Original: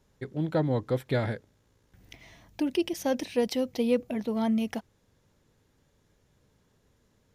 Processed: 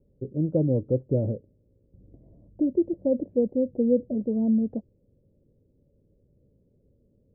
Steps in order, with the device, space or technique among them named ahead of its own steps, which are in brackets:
under water (low-pass filter 420 Hz 24 dB per octave; parametric band 560 Hz +11.5 dB 0.35 octaves)
level +4 dB

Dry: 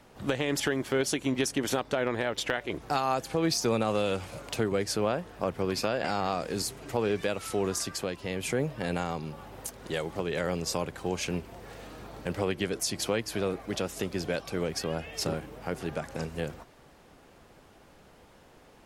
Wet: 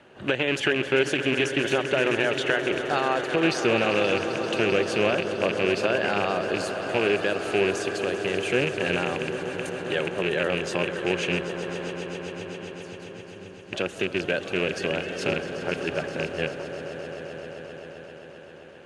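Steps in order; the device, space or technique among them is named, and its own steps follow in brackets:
0:11.91–0:13.73: guitar amp tone stack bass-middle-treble 10-0-1
echo that builds up and dies away 131 ms, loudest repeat 5, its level −13 dB
car door speaker with a rattle (loose part that buzzes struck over −32 dBFS, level −21 dBFS; loudspeaker in its box 86–8,500 Hz, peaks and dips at 370 Hz +8 dB, 590 Hz +5 dB, 1,600 Hz +9 dB, 2,800 Hz +9 dB, 5,300 Hz −8 dB, 7,600 Hz −6 dB)

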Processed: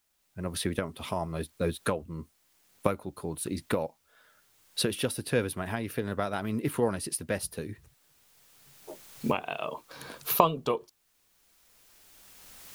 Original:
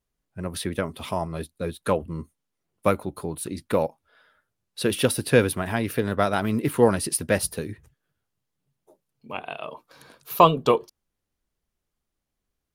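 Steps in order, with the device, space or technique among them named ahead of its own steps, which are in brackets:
cheap recorder with automatic gain (white noise bed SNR 40 dB; camcorder AGC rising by 14 dB per second)
level −9.5 dB

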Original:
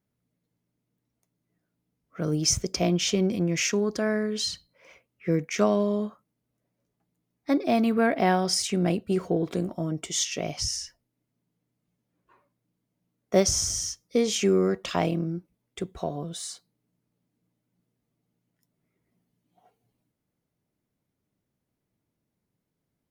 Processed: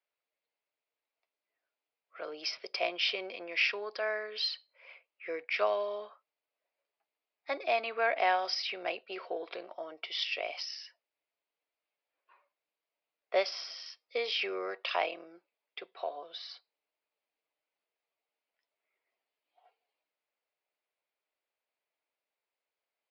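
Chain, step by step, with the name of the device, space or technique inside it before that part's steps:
musical greeting card (downsampling to 11,025 Hz; high-pass filter 550 Hz 24 dB per octave; parametric band 2,500 Hz +7 dB 0.46 octaves)
level −3 dB

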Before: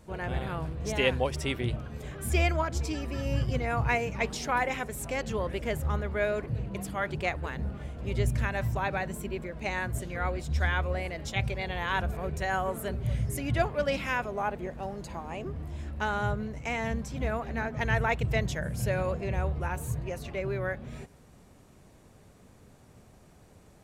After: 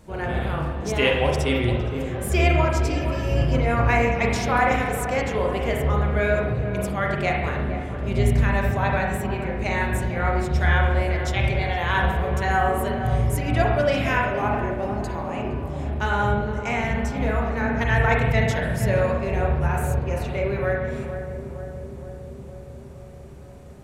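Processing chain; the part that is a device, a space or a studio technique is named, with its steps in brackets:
dub delay into a spring reverb (feedback echo with a low-pass in the loop 465 ms, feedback 76%, low-pass 1,100 Hz, level −8.5 dB; spring reverb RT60 1 s, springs 30/34/41 ms, chirp 40 ms, DRR −0.5 dB)
level +4 dB

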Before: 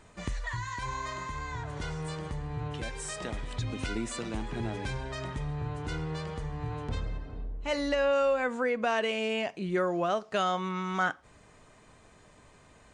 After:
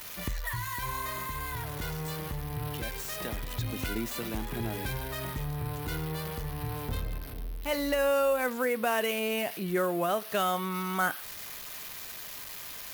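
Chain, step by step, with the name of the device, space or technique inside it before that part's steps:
budget class-D amplifier (gap after every zero crossing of 0.059 ms; spike at every zero crossing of −26 dBFS)

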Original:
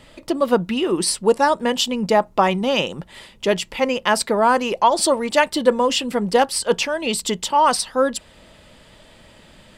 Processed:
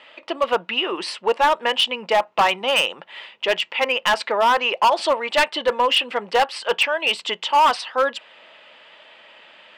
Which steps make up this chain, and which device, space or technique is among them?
megaphone (band-pass filter 700–2,600 Hz; parametric band 2,800 Hz +7.5 dB 0.6 octaves; hard clipping −15.5 dBFS, distortion −10 dB)
level +4 dB

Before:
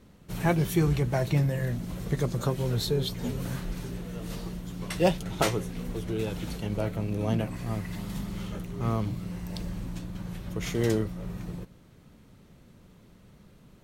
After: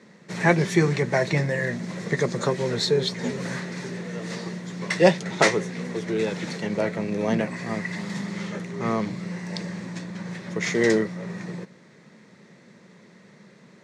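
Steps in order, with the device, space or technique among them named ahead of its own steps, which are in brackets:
television speaker (loudspeaker in its box 180–7,300 Hz, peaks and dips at 280 Hz −9 dB, 740 Hz −4 dB, 1,300 Hz −4 dB, 1,900 Hz +9 dB, 3,000 Hz −8 dB)
level +8.5 dB

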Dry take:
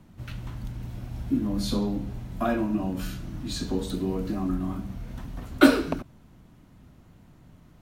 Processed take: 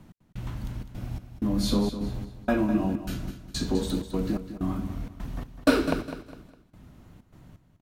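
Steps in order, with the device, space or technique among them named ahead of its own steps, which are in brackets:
trance gate with a delay (gate pattern "x..xxxx.x" 127 BPM −60 dB; repeating echo 204 ms, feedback 33%, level −11 dB)
level +2 dB

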